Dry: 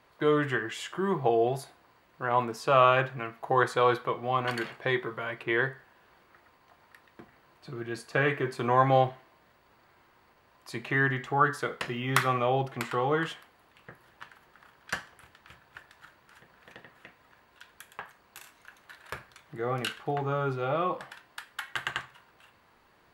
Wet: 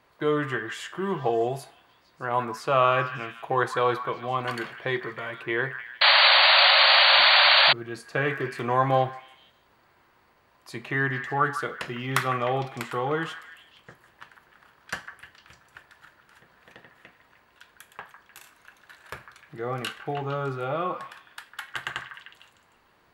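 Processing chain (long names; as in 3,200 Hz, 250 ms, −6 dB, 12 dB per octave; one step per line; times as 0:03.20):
echo through a band-pass that steps 152 ms, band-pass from 1,400 Hz, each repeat 0.7 octaves, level −8 dB
0:06.01–0:07.73: sound drawn into the spectrogram noise 540–4,700 Hz −17 dBFS
0:08.24–0:09.07: surface crackle 14 per second −37 dBFS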